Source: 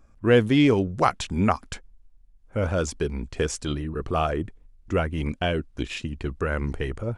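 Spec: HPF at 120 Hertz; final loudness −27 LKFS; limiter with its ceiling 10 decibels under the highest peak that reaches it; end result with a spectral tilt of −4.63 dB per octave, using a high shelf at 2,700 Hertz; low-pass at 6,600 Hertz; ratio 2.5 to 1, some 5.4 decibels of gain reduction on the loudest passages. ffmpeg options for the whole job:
ffmpeg -i in.wav -af "highpass=120,lowpass=6600,highshelf=frequency=2700:gain=6.5,acompressor=threshold=-21dB:ratio=2.5,volume=4.5dB,alimiter=limit=-14dB:level=0:latency=1" out.wav

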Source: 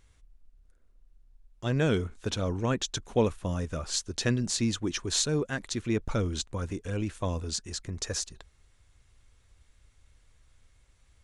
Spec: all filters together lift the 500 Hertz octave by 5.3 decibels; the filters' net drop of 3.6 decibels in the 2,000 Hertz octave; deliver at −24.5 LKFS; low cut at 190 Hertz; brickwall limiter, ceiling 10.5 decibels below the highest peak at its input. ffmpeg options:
ffmpeg -i in.wav -af "highpass=190,equalizer=frequency=500:width_type=o:gain=6.5,equalizer=frequency=2000:width_type=o:gain=-5.5,volume=7.5dB,alimiter=limit=-12dB:level=0:latency=1" out.wav

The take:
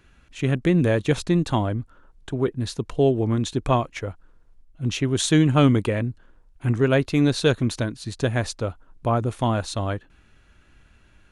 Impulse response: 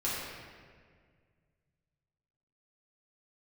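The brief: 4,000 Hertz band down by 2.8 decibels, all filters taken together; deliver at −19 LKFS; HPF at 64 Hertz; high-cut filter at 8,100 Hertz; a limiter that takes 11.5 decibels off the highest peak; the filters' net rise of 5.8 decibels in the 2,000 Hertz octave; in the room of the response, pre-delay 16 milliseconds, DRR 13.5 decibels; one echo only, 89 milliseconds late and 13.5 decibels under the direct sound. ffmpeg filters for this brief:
-filter_complex "[0:a]highpass=64,lowpass=8100,equalizer=frequency=2000:width_type=o:gain=9,equalizer=frequency=4000:width_type=o:gain=-6.5,alimiter=limit=-16dB:level=0:latency=1,aecho=1:1:89:0.211,asplit=2[link_01][link_02];[1:a]atrim=start_sample=2205,adelay=16[link_03];[link_02][link_03]afir=irnorm=-1:irlink=0,volume=-20.5dB[link_04];[link_01][link_04]amix=inputs=2:normalize=0,volume=8dB"

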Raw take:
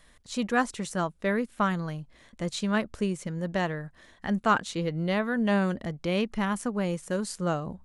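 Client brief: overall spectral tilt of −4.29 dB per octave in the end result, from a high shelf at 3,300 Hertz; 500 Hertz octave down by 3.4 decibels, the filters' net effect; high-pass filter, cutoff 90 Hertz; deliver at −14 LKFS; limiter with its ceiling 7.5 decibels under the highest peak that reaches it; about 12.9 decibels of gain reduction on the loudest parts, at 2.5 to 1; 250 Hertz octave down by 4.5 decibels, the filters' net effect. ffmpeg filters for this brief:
ffmpeg -i in.wav -af "highpass=90,equalizer=frequency=250:width_type=o:gain=-5.5,equalizer=frequency=500:width_type=o:gain=-3,highshelf=frequency=3300:gain=5,acompressor=threshold=-38dB:ratio=2.5,volume=26.5dB,alimiter=limit=-3.5dB:level=0:latency=1" out.wav

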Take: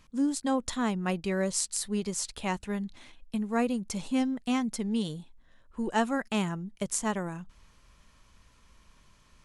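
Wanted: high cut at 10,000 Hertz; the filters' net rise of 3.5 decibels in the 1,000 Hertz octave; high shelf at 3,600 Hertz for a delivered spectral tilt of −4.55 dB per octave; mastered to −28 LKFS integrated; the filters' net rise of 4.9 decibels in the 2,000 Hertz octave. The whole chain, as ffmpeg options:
ffmpeg -i in.wav -af "lowpass=10000,equalizer=frequency=1000:width_type=o:gain=3.5,equalizer=frequency=2000:width_type=o:gain=6,highshelf=frequency=3600:gain=-4,volume=2dB" out.wav

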